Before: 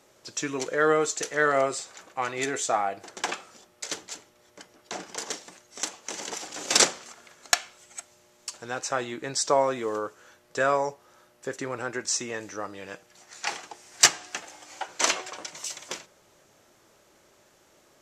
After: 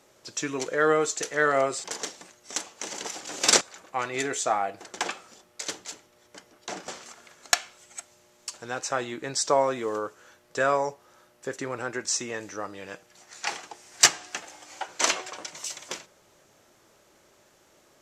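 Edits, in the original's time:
5.11–6.88 move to 1.84

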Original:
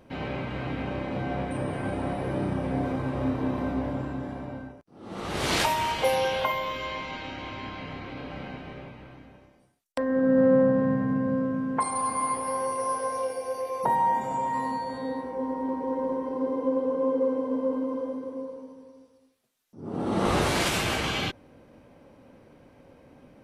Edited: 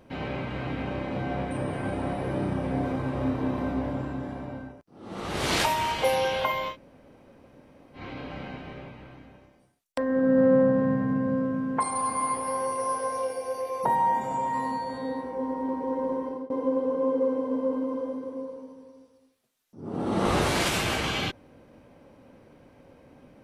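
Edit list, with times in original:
6.72–7.98 room tone, crossfade 0.10 s
16.17–16.5 fade out equal-power, to -23.5 dB

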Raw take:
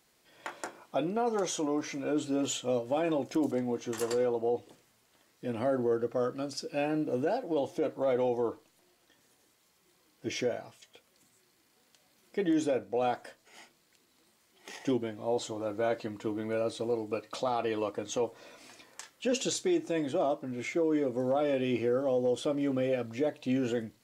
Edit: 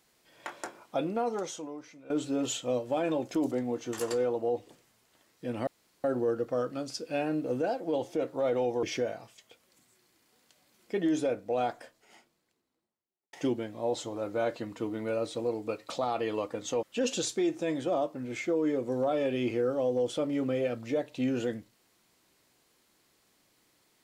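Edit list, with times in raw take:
1.2–2.1 fade out quadratic, to -16.5 dB
5.67 insert room tone 0.37 s
8.46–10.27 cut
12.96–14.77 studio fade out
18.27–19.11 cut

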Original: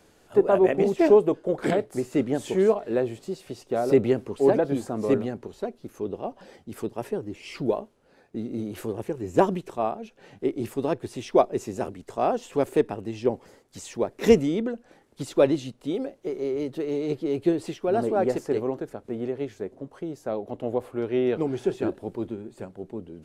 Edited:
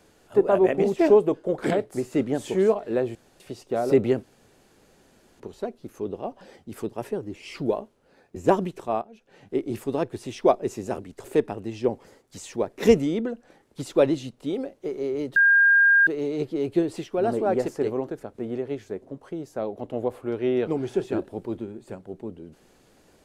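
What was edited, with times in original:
3.15–3.4 room tone
4.23–5.4 room tone
8.36–9.26 cut
9.92–10.48 fade in, from -15.5 dB
12.14–12.65 cut
16.77 add tone 1610 Hz -13.5 dBFS 0.71 s

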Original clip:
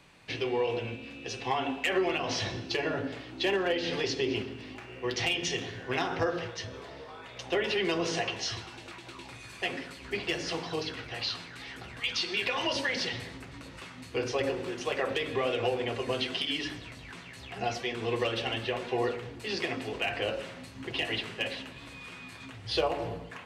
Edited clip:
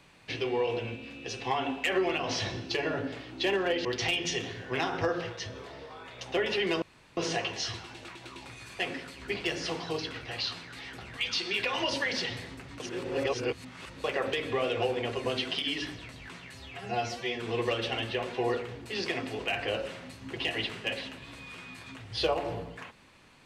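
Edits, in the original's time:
3.85–5.03 cut
8 insert room tone 0.35 s
13.63–14.87 reverse
17.38–17.96 stretch 1.5×

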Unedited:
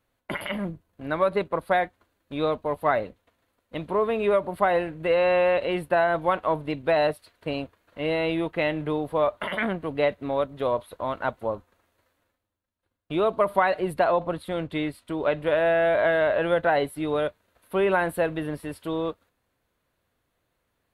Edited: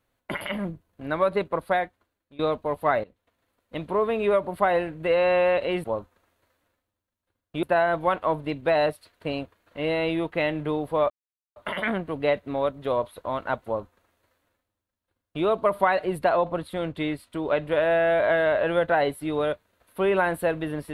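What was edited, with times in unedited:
1.63–2.39 fade out, to -21 dB
3.04–3.78 fade in equal-power, from -16.5 dB
9.31 insert silence 0.46 s
11.4–13.19 copy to 5.84

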